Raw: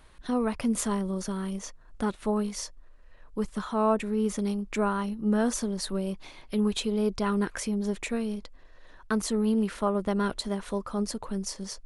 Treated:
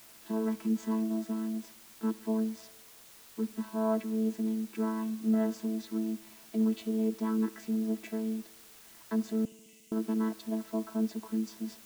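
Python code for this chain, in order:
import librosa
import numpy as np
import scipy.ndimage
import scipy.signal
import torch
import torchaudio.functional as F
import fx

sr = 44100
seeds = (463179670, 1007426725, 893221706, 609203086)

p1 = fx.chord_vocoder(x, sr, chord='bare fifth', root=57)
p2 = fx.rider(p1, sr, range_db=10, speed_s=2.0)
p3 = p1 + (p2 * 10.0 ** (-3.0 / 20.0))
p4 = fx.quant_dither(p3, sr, seeds[0], bits=8, dither='triangular')
p5 = fx.cheby_ripple_highpass(p4, sr, hz=2000.0, ripple_db=9, at=(9.45, 9.92))
p6 = fx.echo_bbd(p5, sr, ms=70, stages=2048, feedback_pct=73, wet_db=-21.5)
y = p6 * 10.0 ** (-6.5 / 20.0)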